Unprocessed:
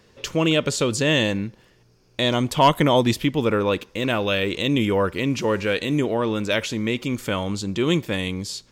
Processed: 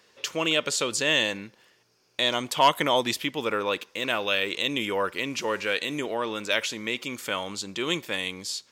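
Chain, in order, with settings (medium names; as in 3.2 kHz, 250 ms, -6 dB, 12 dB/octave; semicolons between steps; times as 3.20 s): high-pass 920 Hz 6 dB/octave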